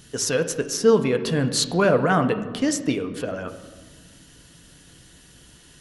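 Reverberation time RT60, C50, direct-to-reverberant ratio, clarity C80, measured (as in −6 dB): 1.4 s, 11.0 dB, 6.5 dB, 13.0 dB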